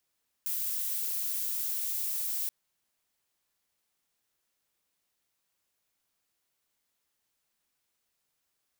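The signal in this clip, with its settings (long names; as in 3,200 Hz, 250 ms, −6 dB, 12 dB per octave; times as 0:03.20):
noise violet, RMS −32.5 dBFS 2.03 s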